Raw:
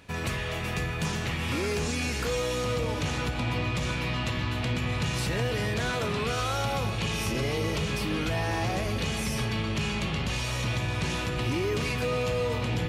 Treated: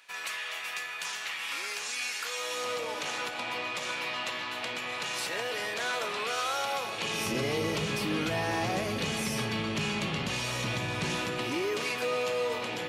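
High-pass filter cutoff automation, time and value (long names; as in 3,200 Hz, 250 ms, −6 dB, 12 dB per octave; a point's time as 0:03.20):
0:02.28 1,200 Hz
0:02.68 560 Hz
0:06.86 560 Hz
0:07.34 160 Hz
0:11.11 160 Hz
0:11.73 380 Hz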